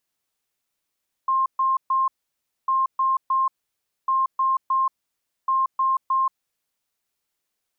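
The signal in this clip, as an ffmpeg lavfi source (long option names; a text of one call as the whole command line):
ffmpeg -f lavfi -i "aevalsrc='0.133*sin(2*PI*1060*t)*clip(min(mod(mod(t,1.4),0.31),0.18-mod(mod(t,1.4),0.31))/0.005,0,1)*lt(mod(t,1.4),0.93)':duration=5.6:sample_rate=44100" out.wav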